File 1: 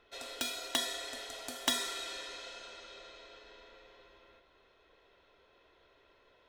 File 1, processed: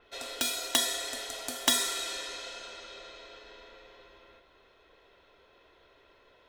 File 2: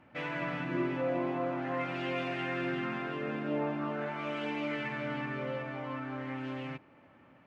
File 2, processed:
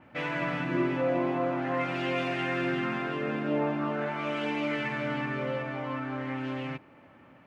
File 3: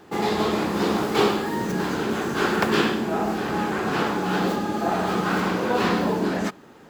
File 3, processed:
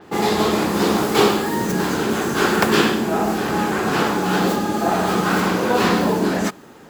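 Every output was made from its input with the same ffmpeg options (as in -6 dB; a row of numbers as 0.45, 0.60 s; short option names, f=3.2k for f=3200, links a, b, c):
-af "adynamicequalizer=threshold=0.00447:dfrequency=5600:dqfactor=0.7:tfrequency=5600:tqfactor=0.7:attack=5:release=100:ratio=0.375:range=3.5:mode=boostabove:tftype=highshelf,volume=4.5dB"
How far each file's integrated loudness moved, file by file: +6.5, +4.5, +4.5 LU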